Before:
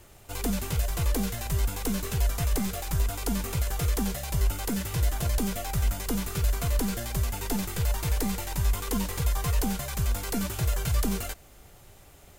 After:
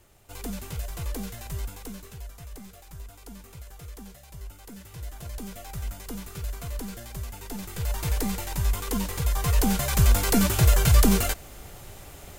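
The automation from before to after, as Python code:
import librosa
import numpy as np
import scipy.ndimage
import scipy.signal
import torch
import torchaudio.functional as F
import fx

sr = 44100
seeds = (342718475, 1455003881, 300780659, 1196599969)

y = fx.gain(x, sr, db=fx.line((1.58, -6.0), (2.28, -15.5), (4.59, -15.5), (5.71, -7.5), (7.52, -7.5), (8.04, 0.5), (9.24, 0.5), (9.99, 8.5)))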